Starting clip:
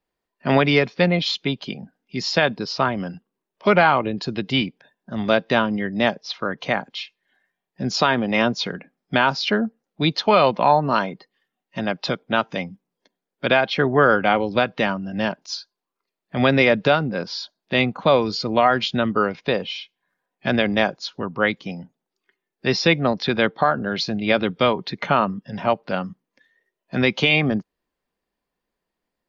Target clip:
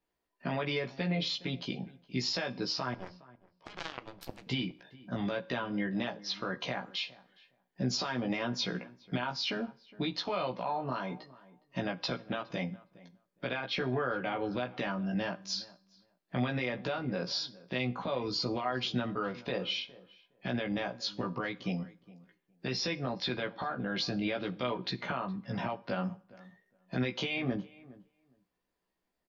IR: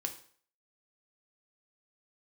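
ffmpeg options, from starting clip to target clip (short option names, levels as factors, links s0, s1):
-filter_complex "[0:a]acompressor=threshold=0.0708:ratio=12,alimiter=limit=0.1:level=0:latency=1:release=71,asplit=2[s0][s1];[s1]adelay=16,volume=0.708[s2];[s0][s2]amix=inputs=2:normalize=0,asettb=1/sr,asplit=3[s3][s4][s5];[s3]atrim=end=2.944[s6];[s4]atrim=start=2.94:end=4.47,asetpts=PTS-STARTPTS,afade=t=in:d=0.004:c=qsin,afade=t=out:st=1.526:d=0.004:c=qsin,aeval=exprs='0.158*(cos(1*acos(clip(val(0)/0.158,-1,1)))-cos(1*PI/2))+0.0126*(cos(2*acos(clip(val(0)/0.158,-1,1)))-cos(2*PI/2))+0.0631*(cos(3*acos(clip(val(0)/0.158,-1,1)))-cos(3*PI/2))':c=same[s7];[s5]atrim=start=4.466[s8];[s6][s7]acrossfade=d=0.004:c1=hsin:c2=qsin[s9];[s9][s8]acrossfade=d=0.004:c1=qsin:c2=hsin,asplit=2[s10][s11];[s11]adelay=413,lowpass=f=1700:p=1,volume=0.1,asplit=2[s12][s13];[s13]adelay=413,lowpass=f=1700:p=1,volume=0.15[s14];[s10][s12][s14]amix=inputs=3:normalize=0,asplit=2[s15][s16];[1:a]atrim=start_sample=2205[s17];[s16][s17]afir=irnorm=-1:irlink=0,volume=0.473[s18];[s15][s18]amix=inputs=2:normalize=0,volume=0.398"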